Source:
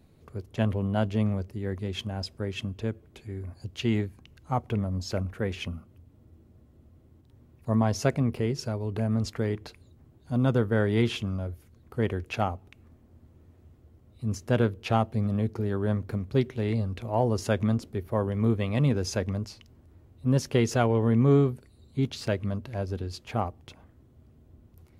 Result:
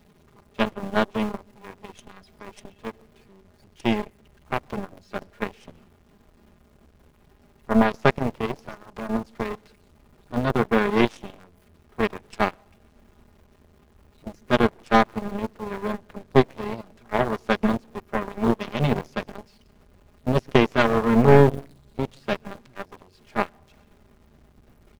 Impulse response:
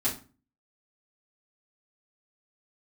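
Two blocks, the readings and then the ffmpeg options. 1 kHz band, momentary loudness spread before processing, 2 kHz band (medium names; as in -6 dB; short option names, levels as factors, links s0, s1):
+8.0 dB, 13 LU, +9.0 dB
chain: -filter_complex "[0:a]aeval=exprs='val(0)+0.5*0.0168*sgn(val(0))':c=same,acrossover=split=3300[s0][s1];[s1]acompressor=threshold=0.00355:ratio=4:attack=1:release=60[s2];[s0][s2]amix=inputs=2:normalize=0,aecho=1:1:4.9:0.96,asplit=2[s3][s4];[s4]asubboost=boost=11:cutoff=56[s5];[1:a]atrim=start_sample=2205,asetrate=25578,aresample=44100,adelay=121[s6];[s5][s6]afir=irnorm=-1:irlink=0,volume=0.0473[s7];[s3][s7]amix=inputs=2:normalize=0,aeval=exprs='0.447*(cos(1*acos(clip(val(0)/0.447,-1,1)))-cos(1*PI/2))+0.2*(cos(2*acos(clip(val(0)/0.447,-1,1)))-cos(2*PI/2))+0.0708*(cos(7*acos(clip(val(0)/0.447,-1,1)))-cos(7*PI/2))+0.00251*(cos(8*acos(clip(val(0)/0.447,-1,1)))-cos(8*PI/2))':c=same,volume=1.41"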